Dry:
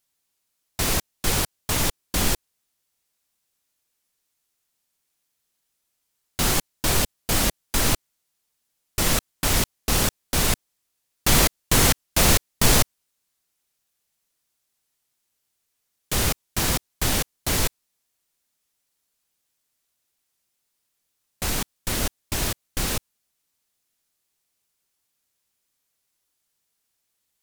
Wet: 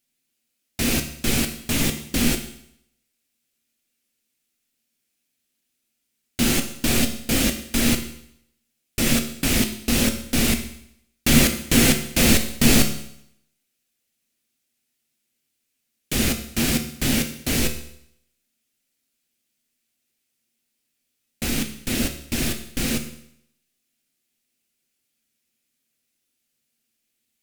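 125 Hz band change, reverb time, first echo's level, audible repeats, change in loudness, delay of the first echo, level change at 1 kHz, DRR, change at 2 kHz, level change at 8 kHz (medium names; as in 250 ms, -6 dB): +1.0 dB, 0.70 s, no echo, no echo, +1.5 dB, no echo, -5.0 dB, 5.5 dB, +2.0 dB, 0.0 dB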